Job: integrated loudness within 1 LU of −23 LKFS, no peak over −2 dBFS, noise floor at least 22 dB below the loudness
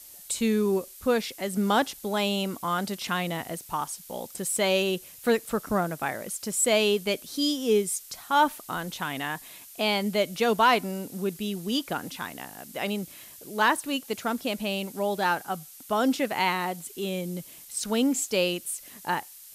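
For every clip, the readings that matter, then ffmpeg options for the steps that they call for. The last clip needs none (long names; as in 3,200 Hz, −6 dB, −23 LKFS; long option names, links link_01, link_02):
background noise floor −48 dBFS; target noise floor −50 dBFS; integrated loudness −27.5 LKFS; sample peak −11.0 dBFS; target loudness −23.0 LKFS
→ -af "afftdn=noise_reduction=6:noise_floor=-48"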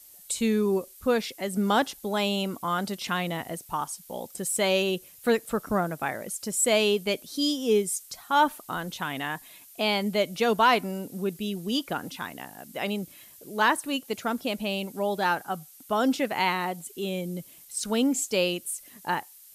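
background noise floor −51 dBFS; integrated loudness −27.5 LKFS; sample peak −11.0 dBFS; target loudness −23.0 LKFS
→ -af "volume=4.5dB"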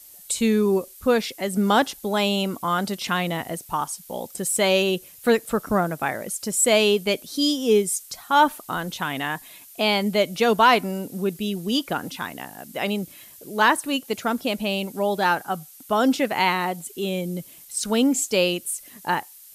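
integrated loudness −23.0 LKFS; sample peak −6.5 dBFS; background noise floor −47 dBFS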